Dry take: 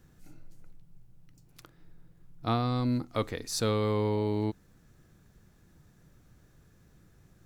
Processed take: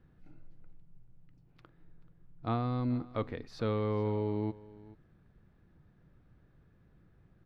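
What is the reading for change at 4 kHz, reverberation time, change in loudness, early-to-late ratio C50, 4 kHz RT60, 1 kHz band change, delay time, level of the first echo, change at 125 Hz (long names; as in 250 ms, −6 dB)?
−13.0 dB, no reverb audible, −4.0 dB, no reverb audible, no reverb audible, −4.5 dB, 433 ms, −20.0 dB, −3.0 dB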